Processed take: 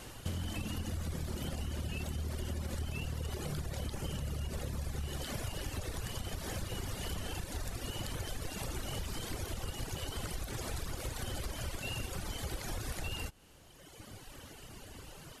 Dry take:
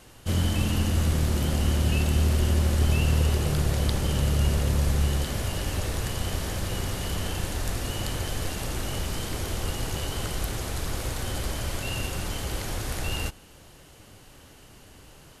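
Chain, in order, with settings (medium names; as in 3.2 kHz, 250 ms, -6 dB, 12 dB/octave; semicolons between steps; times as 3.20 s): reverb removal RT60 1.7 s; peak limiter -20.5 dBFS, peak gain reduction 6.5 dB; compression, threshold -39 dBFS, peak gain reduction 13.5 dB; trim +3.5 dB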